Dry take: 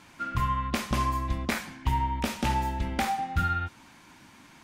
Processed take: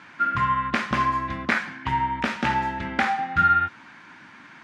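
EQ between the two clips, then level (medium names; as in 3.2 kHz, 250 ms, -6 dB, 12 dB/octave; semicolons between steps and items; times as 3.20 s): band-pass 160–5000 Hz; bass shelf 230 Hz +7 dB; peaking EQ 1.6 kHz +12.5 dB 1.2 oct; 0.0 dB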